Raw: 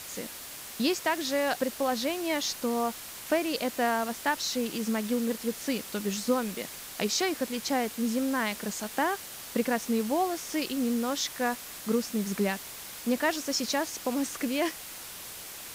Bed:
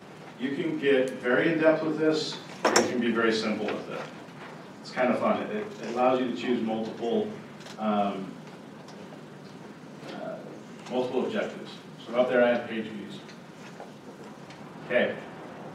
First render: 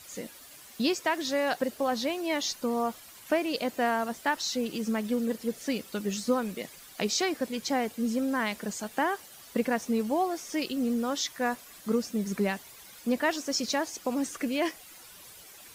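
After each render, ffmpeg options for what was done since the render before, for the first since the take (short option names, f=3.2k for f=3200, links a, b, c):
-af "afftdn=nr=11:nf=-43"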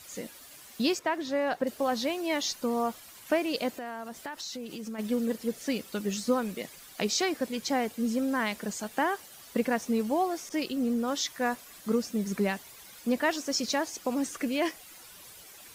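-filter_complex "[0:a]asettb=1/sr,asplit=3[a][b][c];[a]atrim=end=0.994[d];[b]atrim=start=0.99:end=1.67,asetpts=PTS-STARTPTS,afade=t=in:d=0.004:c=qsin,afade=t=out:st=0.676:d=0.004:c=qsin,highshelf=f=3k:g=-12[e];[c]atrim=start=1.666[f];[d][e]acrossfade=d=0.004:c1=hsin:c2=qsin[g];[g][f]acrossfade=d=0.004:c1=qsin:c2=hsin,asplit=3[h][i][j];[h]afade=t=out:st=3.75:d=0.02[k];[i]acompressor=threshold=-36dB:ratio=4:attack=3.2:release=140:knee=1:detection=peak,afade=t=in:st=3.75:d=0.02,afade=t=out:st=4.98:d=0.02[l];[j]afade=t=in:st=4.98:d=0.02[m];[k][l][m]amix=inputs=3:normalize=0,asettb=1/sr,asplit=3[n][o][p];[n]atrim=end=10.494[q];[o]atrim=start=10.49:end=11.08,asetpts=PTS-STARTPTS,afade=t=in:d=0.004:c=qsin,afade=t=out:st=0.586:d=0.004:c=qsin,adynamicequalizer=threshold=0.00562:dfrequency=1700:dqfactor=0.7:tfrequency=1700:tqfactor=0.7:attack=5:release=100:ratio=0.375:range=2:mode=cutabove:tftype=highshelf[r];[p]atrim=start=11.076[s];[q][r]acrossfade=d=0.004:c1=hsin:c2=qsin[t];[t][s]acrossfade=d=0.004:c1=qsin:c2=hsin"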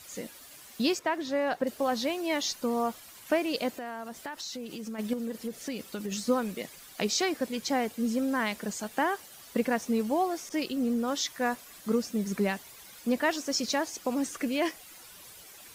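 -filter_complex "[0:a]asettb=1/sr,asplit=3[a][b][c];[a]atrim=end=5.134[d];[b]atrim=start=5.13:end=6.12,asetpts=PTS-STARTPTS,afade=t=in:d=0.004:c=qsin,afade=t=out:st=0.986:d=0.004:c=qsin,acompressor=threshold=-30dB:ratio=6:attack=3.2:release=140:knee=1:detection=peak[e];[c]atrim=start=6.116[f];[d][e]acrossfade=d=0.004:c1=hsin:c2=qsin[g];[g][f]acrossfade=d=0.004:c1=qsin:c2=hsin"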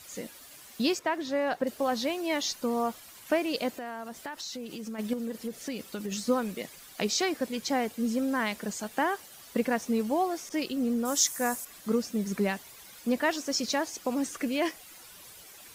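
-filter_complex "[0:a]asettb=1/sr,asplit=3[a][b][c];[a]atrim=end=11.054[d];[b]atrim=start=11.05:end=11.65,asetpts=PTS-STARTPTS,afade=t=in:d=0.004:c=qsin,afade=t=out:st=0.596:d=0.004:c=qsin,highshelf=f=5.4k:t=q:w=1.5:g=11.5[e];[c]atrim=start=11.646[f];[d][e]acrossfade=d=0.004:c1=hsin:c2=qsin[g];[g][f]acrossfade=d=0.004:c1=qsin:c2=hsin"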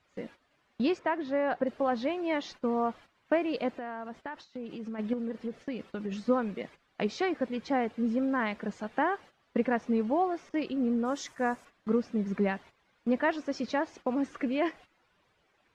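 -af "lowpass=2.2k,agate=range=-13dB:threshold=-48dB:ratio=16:detection=peak"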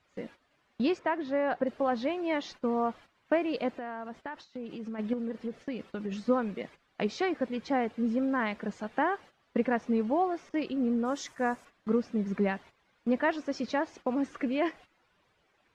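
-af anull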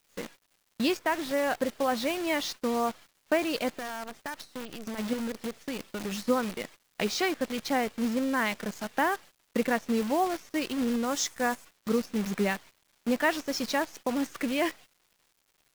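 -af "crystalizer=i=4.5:c=0,acrusher=bits=7:dc=4:mix=0:aa=0.000001"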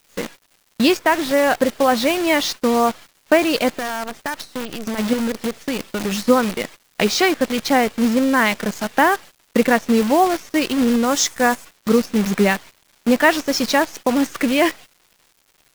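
-af "volume=11.5dB"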